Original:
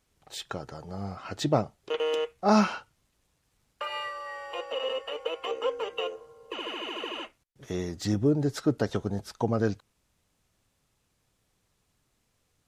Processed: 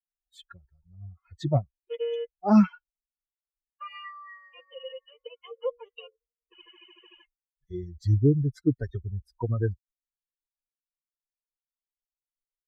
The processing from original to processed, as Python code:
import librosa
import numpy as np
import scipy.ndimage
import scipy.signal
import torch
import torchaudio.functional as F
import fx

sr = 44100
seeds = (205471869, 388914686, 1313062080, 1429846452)

y = fx.bin_expand(x, sr, power=3.0)
y = fx.riaa(y, sr, side='playback')